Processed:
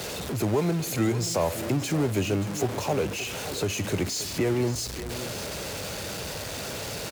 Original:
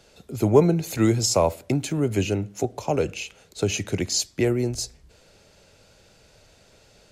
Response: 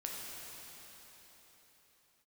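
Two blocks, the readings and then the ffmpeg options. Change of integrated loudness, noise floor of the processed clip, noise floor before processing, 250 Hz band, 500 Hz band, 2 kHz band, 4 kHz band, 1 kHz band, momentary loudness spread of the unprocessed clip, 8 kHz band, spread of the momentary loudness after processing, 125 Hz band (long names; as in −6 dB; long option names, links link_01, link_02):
−4.5 dB, −35 dBFS, −57 dBFS, −3.5 dB, −4.5 dB, +1.5 dB, −1.0 dB, −2.0 dB, 11 LU, −2.5 dB, 7 LU, −2.5 dB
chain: -filter_complex "[0:a]aeval=exprs='val(0)+0.5*0.0596*sgn(val(0))':channel_layout=same,highpass=68,acrossover=split=960[link_01][link_02];[link_01]alimiter=limit=-13.5dB:level=0:latency=1:release=211[link_03];[link_02]asoftclip=type=tanh:threshold=-25.5dB[link_04];[link_03][link_04]amix=inputs=2:normalize=0,aecho=1:1:578:0.224,volume=-3dB" -ar 48000 -c:a libvorbis -b:a 192k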